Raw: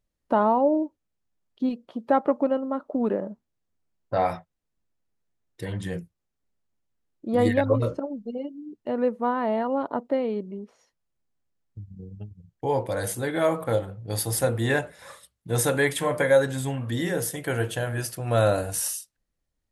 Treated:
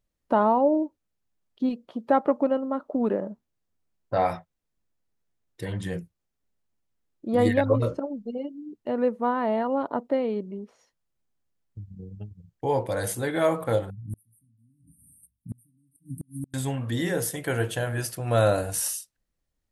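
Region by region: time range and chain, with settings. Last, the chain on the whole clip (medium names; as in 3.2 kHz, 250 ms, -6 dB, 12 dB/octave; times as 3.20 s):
13.90–16.54 s: brick-wall FIR band-stop 300–8400 Hz + inverted gate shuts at -24 dBFS, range -35 dB
whole clip: none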